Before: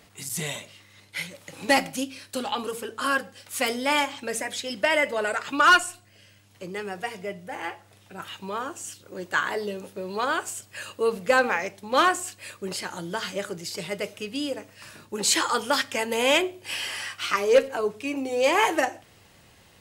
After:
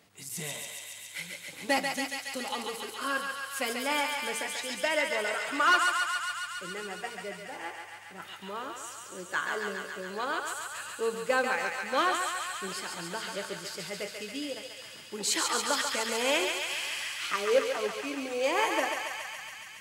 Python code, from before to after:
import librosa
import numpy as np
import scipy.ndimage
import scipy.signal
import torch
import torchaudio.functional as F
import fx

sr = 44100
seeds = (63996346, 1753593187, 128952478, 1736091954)

p1 = scipy.signal.sosfilt(scipy.signal.butter(2, 110.0, 'highpass', fs=sr, output='sos'), x)
p2 = p1 + fx.echo_thinned(p1, sr, ms=139, feedback_pct=84, hz=730.0, wet_db=-3.5, dry=0)
y = p2 * 10.0 ** (-7.0 / 20.0)